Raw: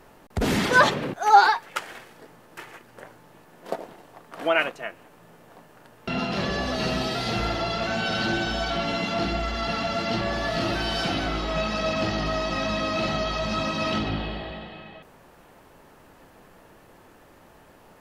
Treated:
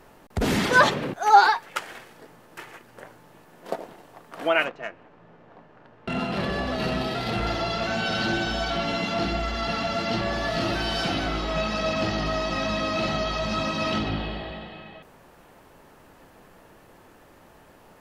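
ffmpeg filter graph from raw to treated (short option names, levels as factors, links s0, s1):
-filter_complex "[0:a]asettb=1/sr,asplit=3[s0][s1][s2];[s0]atrim=end=4.654[s3];[s1]atrim=start=4.65:end=7.47,asetpts=PTS-STARTPTS,afade=t=in:d=0.004:c=qsin,afade=t=out:st=2.816:d=0.004:c=qsin,lowpass=6800,adynamicsmooth=sensitivity=3:basefreq=3100[s4];[s2]atrim=start=7.466[s5];[s3][s4]acrossfade=d=0.004:c1=hsin:c2=qsin[s6];[s6][s5]acrossfade=d=0.004:c1=qsin:c2=hsin"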